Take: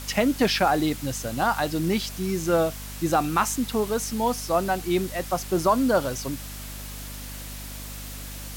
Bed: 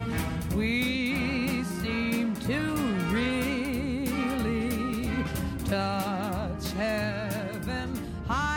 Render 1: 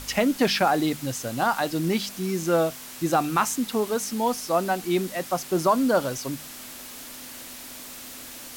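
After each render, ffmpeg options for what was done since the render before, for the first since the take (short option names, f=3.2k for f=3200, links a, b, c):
-af "bandreject=f=50:t=h:w=4,bandreject=f=100:t=h:w=4,bandreject=f=150:t=h:w=4,bandreject=f=200:t=h:w=4"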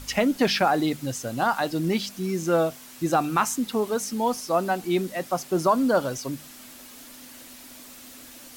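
-af "afftdn=nr=6:nf=-41"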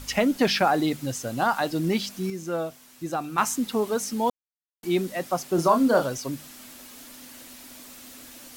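-filter_complex "[0:a]asettb=1/sr,asplit=3[a][b][c];[a]atrim=end=5.554[d];[b]atrim=start=5.55:end=6.06,asetpts=PTS-STARTPTS,afade=t=in:d=0.004:c=qsin,afade=t=out:st=0.506:d=0.004:c=qsin,asplit=2[e][f];[f]adelay=30,volume=-5.5dB[g];[e][g]amix=inputs=2:normalize=0,atrim=end_sample=22491[h];[c]atrim=start=6.056[i];[d][h]acrossfade=d=0.004:c1=hsin:c2=qsin[j];[j][i]acrossfade=d=0.004:c1=qsin:c2=hsin,asplit=5[k][l][m][n][o];[k]atrim=end=2.302[p];[l]atrim=start=2.298:end=3.382,asetpts=PTS-STARTPTS,volume=-7dB[q];[m]atrim=start=3.378:end=4.3,asetpts=PTS-STARTPTS,afade=t=out:st=0.918:d=0.004:c=hsin[r];[n]atrim=start=4.3:end=4.83,asetpts=PTS-STARTPTS,volume=0[s];[o]atrim=start=4.83,asetpts=PTS-STARTPTS,afade=t=in:d=0.004:c=hsin[t];[p][q]acrossfade=d=0.004:c1=hsin:c2=hsin[u];[r][s][t]concat=n=3:v=0:a=1[v];[u][v]acrossfade=d=0.004:c1=hsin:c2=hsin"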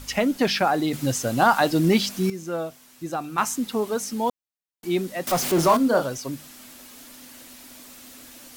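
-filter_complex "[0:a]asettb=1/sr,asplit=3[a][b][c];[a]atrim=end=0.934[d];[b]atrim=start=0.93:end=2.3,asetpts=PTS-STARTPTS,afade=t=in:d=0.004:c=qsin,afade=t=out:st=1.366:d=0.004:c=qsin,acontrast=53[e];[c]atrim=start=2.296[f];[d][e]acrossfade=d=0.004:c1=hsin:c2=qsin[g];[g][f]acrossfade=d=0.004:c1=qsin:c2=hsin,asettb=1/sr,asplit=3[h][i][j];[h]atrim=end=5.274[k];[i]atrim=start=5.27:end=5.77,asetpts=PTS-STARTPTS,afade=t=in:d=0.004:c=qsin,afade=t=out:st=0.496:d=0.004:c=qsin,aeval=exprs='val(0)+0.5*0.075*sgn(val(0))':c=same[l];[j]atrim=start=5.766[m];[k][l]acrossfade=d=0.004:c1=hsin:c2=qsin[n];[n][m]acrossfade=d=0.004:c1=qsin:c2=hsin"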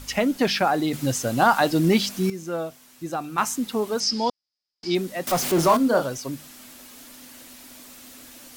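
-filter_complex "[0:a]asettb=1/sr,asplit=3[a][b][c];[a]atrim=end=4.004[d];[b]atrim=start=4:end=4.95,asetpts=PTS-STARTPTS,afade=t=in:d=0.004:c=qsin,afade=t=out:st=0.946:d=0.004:c=qsin,lowpass=f=5k:t=q:w=15[e];[c]atrim=start=4.946[f];[d][e]acrossfade=d=0.004:c1=hsin:c2=qsin[g];[g][f]acrossfade=d=0.004:c1=qsin:c2=hsin"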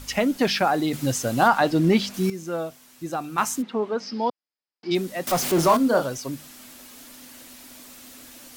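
-filter_complex "[0:a]asettb=1/sr,asplit=3[a][b][c];[a]atrim=end=1.484[d];[b]atrim=start=1.48:end=2.14,asetpts=PTS-STARTPTS,afade=t=in:d=0.004:c=qsin,afade=t=out:st=0.656:d=0.004:c=qsin,aemphasis=mode=reproduction:type=cd[e];[c]atrim=start=2.136[f];[d][e]acrossfade=d=0.004:c1=hsin:c2=qsin[g];[g][f]acrossfade=d=0.004:c1=qsin:c2=hsin,asplit=3[h][i][j];[h]afade=t=out:st=3.61:d=0.02[k];[i]highpass=180,lowpass=2.4k,afade=t=in:st=3.61:d=0.02,afade=t=out:st=4.9:d=0.02[l];[j]afade=t=in:st=4.9:d=0.02[m];[k][l][m]amix=inputs=3:normalize=0"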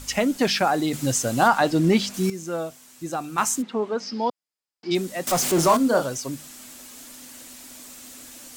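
-af "equalizer=f=7.6k:t=o:w=0.73:g=6.5"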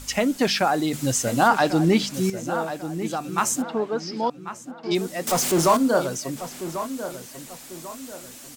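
-filter_complex "[0:a]asplit=2[a][b];[b]adelay=1093,lowpass=f=2.9k:p=1,volume=-11dB,asplit=2[c][d];[d]adelay=1093,lowpass=f=2.9k:p=1,volume=0.38,asplit=2[e][f];[f]adelay=1093,lowpass=f=2.9k:p=1,volume=0.38,asplit=2[g][h];[h]adelay=1093,lowpass=f=2.9k:p=1,volume=0.38[i];[a][c][e][g][i]amix=inputs=5:normalize=0"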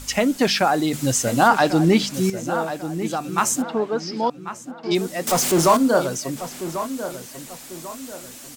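-af "volume=2.5dB"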